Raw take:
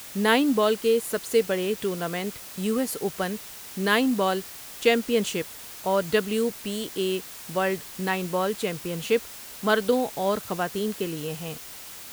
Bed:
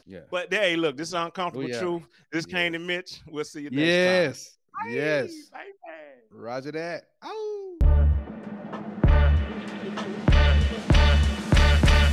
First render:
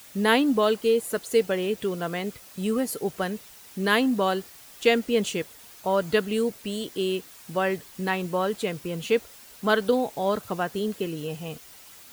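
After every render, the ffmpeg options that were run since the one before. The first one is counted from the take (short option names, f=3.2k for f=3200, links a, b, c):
-af "afftdn=nr=8:nf=-42"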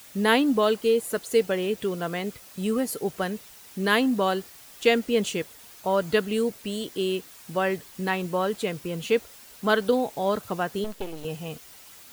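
-filter_complex "[0:a]asettb=1/sr,asplit=3[a][b][c];[a]atrim=end=10.844[d];[b]atrim=start=10.84:end=11.25,asetpts=PTS-STARTPTS,afade=t=in:d=0.004:c=qsin,afade=t=out:st=0.406:d=0.004:c=qsin,aeval=exprs='max(val(0),0)':c=same[e];[c]atrim=start=11.246[f];[d][e]acrossfade=d=0.004:c1=hsin:c2=qsin[g];[g][f]acrossfade=d=0.004:c1=qsin:c2=hsin"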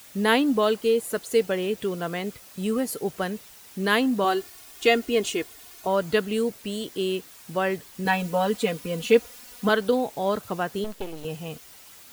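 -filter_complex "[0:a]asettb=1/sr,asplit=3[a][b][c];[a]atrim=end=4.244[d];[b]atrim=start=4.24:end=5.87,asetpts=PTS-STARTPTS,afade=t=in:d=0.004:c=qsin,afade=t=out:st=1.626:d=0.004:c=qsin,aecho=1:1:2.8:0.65,atrim=end_sample=71883[e];[c]atrim=start=5.866[f];[d][e]acrossfade=d=0.004:c1=hsin:c2=qsin[g];[g][f]acrossfade=d=0.004:c1=qsin:c2=hsin,asettb=1/sr,asplit=3[h][i][j];[h]atrim=end=8.054[k];[i]atrim=start=8.05:end=9.69,asetpts=PTS-STARTPTS,afade=t=in:d=0.004:c=qsin,afade=t=out:st=1.636:d=0.004:c=qsin,aecho=1:1:4.1:0.99,atrim=end_sample=72324[l];[j]atrim=start=9.686[m];[k][l]acrossfade=d=0.004:c1=hsin:c2=qsin[n];[n][m]acrossfade=d=0.004:c1=qsin:c2=hsin"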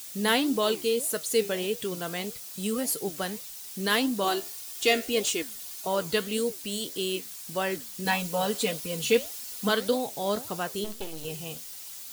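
-filter_complex "[0:a]flanger=delay=6.2:depth=8.8:regen=78:speed=1.7:shape=sinusoidal,acrossover=split=3600[a][b];[b]aeval=exprs='0.075*sin(PI/2*2.51*val(0)/0.075)':c=same[c];[a][c]amix=inputs=2:normalize=0"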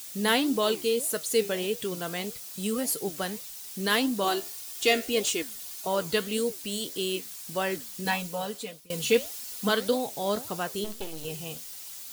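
-filter_complex "[0:a]asplit=2[a][b];[a]atrim=end=8.9,asetpts=PTS-STARTPTS,afade=t=out:st=7.95:d=0.95:silence=0.0707946[c];[b]atrim=start=8.9,asetpts=PTS-STARTPTS,afade=t=in:d=0.004:c=hsin:silence=0.0707946[d];[c][d]concat=n=2:v=0:a=1"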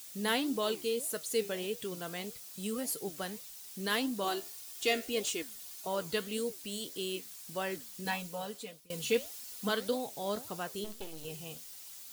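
-af "volume=-7dB"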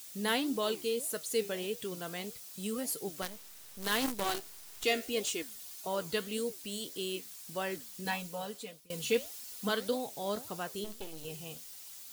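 -filter_complex "[0:a]asettb=1/sr,asplit=3[a][b][c];[a]atrim=end=3.224[d];[b]atrim=start=3.22:end=4.84,asetpts=PTS-STARTPTS,afade=t=in:d=0.004:c=qsin,afade=t=out:st=1.616:d=0.004:c=qsin,acrusher=bits=6:dc=4:mix=0:aa=0.000001[e];[c]atrim=start=4.836[f];[d][e]acrossfade=d=0.004:c1=hsin:c2=qsin[g];[g][f]acrossfade=d=0.004:c1=qsin:c2=hsin"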